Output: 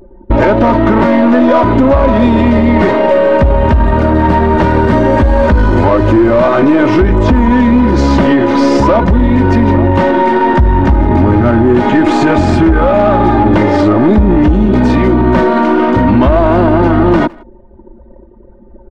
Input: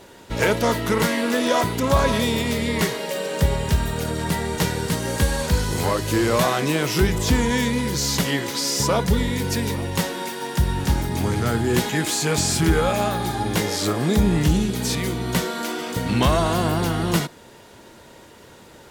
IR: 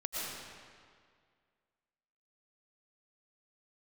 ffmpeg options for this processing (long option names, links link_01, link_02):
-filter_complex "[0:a]anlmdn=10,lowpass=1200,aecho=1:1:3.3:0.76,acompressor=threshold=-23dB:ratio=3,aeval=exprs='0.237*(cos(1*acos(clip(val(0)/0.237,-1,1)))-cos(1*PI/2))+0.00841*(cos(8*acos(clip(val(0)/0.237,-1,1)))-cos(8*PI/2))':channel_layout=same,asoftclip=type=tanh:threshold=-17.5dB,asplit=2[link_01][link_02];[link_02]adelay=160,highpass=300,lowpass=3400,asoftclip=type=hard:threshold=-27dB,volume=-27dB[link_03];[link_01][link_03]amix=inputs=2:normalize=0,alimiter=level_in=25.5dB:limit=-1dB:release=50:level=0:latency=1,volume=-1dB"